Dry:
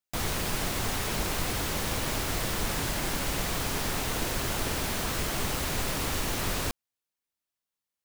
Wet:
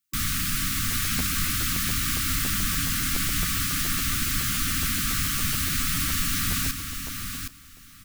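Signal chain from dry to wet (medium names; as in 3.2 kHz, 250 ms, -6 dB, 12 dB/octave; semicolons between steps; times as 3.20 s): brick-wall FIR band-stop 310–1100 Hz; treble shelf 7.8 kHz +6 dB; in parallel at -1 dB: peak limiter -27 dBFS, peak gain reduction 11 dB; on the sum: feedback delay 767 ms, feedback 17%, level -7 dB; crackling interface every 0.14 s, samples 512, repeat, from 0.90 s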